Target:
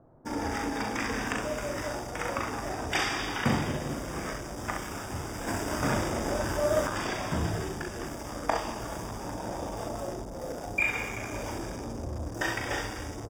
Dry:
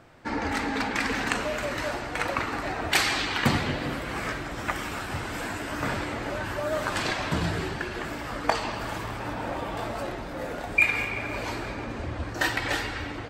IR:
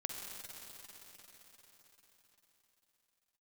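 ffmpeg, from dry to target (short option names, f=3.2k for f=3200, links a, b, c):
-filter_complex "[0:a]aecho=1:1:39|66:0.562|0.473,acrossover=split=1000[a][b];[b]aeval=exprs='sgn(val(0))*max(abs(val(0))-0.0106,0)':c=same[c];[a][c]amix=inputs=2:normalize=0,acrossover=split=3700[d][e];[e]acompressor=threshold=-50dB:ratio=4:attack=1:release=60[f];[d][f]amix=inputs=2:normalize=0,asuperstop=centerf=4200:order=20:qfactor=5.1,highshelf=f=4k:t=q:w=1.5:g=9.5,asettb=1/sr,asplit=3[g][h][i];[g]atrim=end=5.474[j];[h]atrim=start=5.47:end=6.87,asetpts=PTS-STARTPTS,afade=t=in:d=0.004:c=qsin,afade=t=out:st=1.396:d=0.004:c=qsin,acontrast=23[k];[i]atrim=start=6.866[l];[j][k]acrossfade=d=0.004:c1=hsin:c2=qsin[m];[m][l]acrossfade=d=0.004:c1=qsin:c2=hsin,volume=-3.5dB"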